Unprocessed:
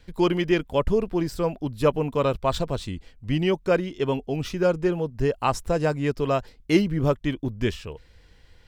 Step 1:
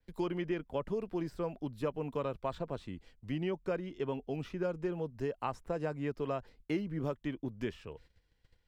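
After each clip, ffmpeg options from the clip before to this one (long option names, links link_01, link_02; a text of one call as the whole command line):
ffmpeg -i in.wav -filter_complex "[0:a]agate=range=-13dB:threshold=-48dB:ratio=16:detection=peak,acrossover=split=140|2500[link_01][link_02][link_03];[link_01]acompressor=threshold=-43dB:ratio=4[link_04];[link_02]acompressor=threshold=-23dB:ratio=4[link_05];[link_03]acompressor=threshold=-50dB:ratio=4[link_06];[link_04][link_05][link_06]amix=inputs=3:normalize=0,adynamicequalizer=threshold=0.00355:dfrequency=3500:dqfactor=0.7:tfrequency=3500:tqfactor=0.7:attack=5:release=100:ratio=0.375:range=2:mode=cutabove:tftype=highshelf,volume=-8.5dB" out.wav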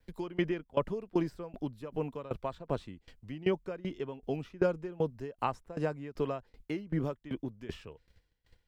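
ffmpeg -i in.wav -af "aeval=exprs='val(0)*pow(10,-21*if(lt(mod(2.6*n/s,1),2*abs(2.6)/1000),1-mod(2.6*n/s,1)/(2*abs(2.6)/1000),(mod(2.6*n/s,1)-2*abs(2.6)/1000)/(1-2*abs(2.6)/1000))/20)':channel_layout=same,volume=8.5dB" out.wav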